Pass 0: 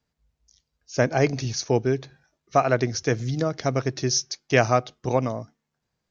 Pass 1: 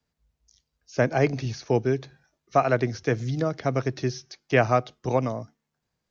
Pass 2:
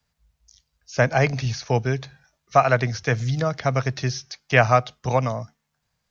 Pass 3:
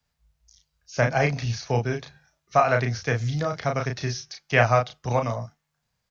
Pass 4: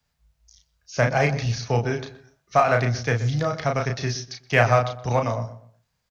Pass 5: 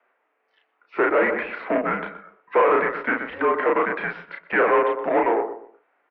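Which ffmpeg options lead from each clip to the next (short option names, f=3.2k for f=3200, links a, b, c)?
-filter_complex "[0:a]acrossover=split=4200[a][b];[b]acompressor=threshold=-47dB:ratio=4:attack=1:release=60[c];[a][c]amix=inputs=2:normalize=0,acrossover=split=160|840|3300[d][e][f][g];[g]alimiter=level_in=7.5dB:limit=-24dB:level=0:latency=1:release=151,volume=-7.5dB[h];[d][e][f][h]amix=inputs=4:normalize=0,volume=-1dB"
-af "equalizer=f=330:t=o:w=1.1:g=-13.5,volume=7dB"
-filter_complex "[0:a]asplit=2[a][b];[b]adelay=34,volume=-4.5dB[c];[a][c]amix=inputs=2:normalize=0,volume=-3.5dB"
-filter_complex "[0:a]asplit=2[a][b];[b]adelay=123,lowpass=f=1.4k:p=1,volume=-13dB,asplit=2[c][d];[d]adelay=123,lowpass=f=1.4k:p=1,volume=0.31,asplit=2[e][f];[f]adelay=123,lowpass=f=1.4k:p=1,volume=0.31[g];[a][c][e][g]amix=inputs=4:normalize=0,asplit=2[h][i];[i]asoftclip=type=hard:threshold=-22.5dB,volume=-10dB[j];[h][j]amix=inputs=2:normalize=0"
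-filter_complex "[0:a]asplit=2[a][b];[b]highpass=f=720:p=1,volume=27dB,asoftclip=type=tanh:threshold=-5dB[c];[a][c]amix=inputs=2:normalize=0,lowpass=f=1.6k:p=1,volume=-6dB,highpass=f=580:t=q:w=0.5412,highpass=f=580:t=q:w=1.307,lowpass=f=2.6k:t=q:w=0.5176,lowpass=f=2.6k:t=q:w=0.7071,lowpass=f=2.6k:t=q:w=1.932,afreqshift=-210,volume=-3dB"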